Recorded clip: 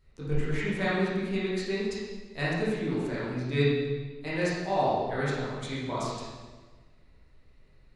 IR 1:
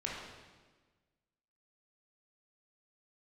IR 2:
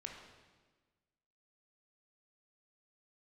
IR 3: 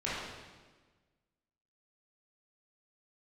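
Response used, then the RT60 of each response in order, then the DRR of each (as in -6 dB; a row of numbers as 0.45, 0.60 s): 3; 1.4, 1.4, 1.4 s; -4.0, 1.0, -9.5 dB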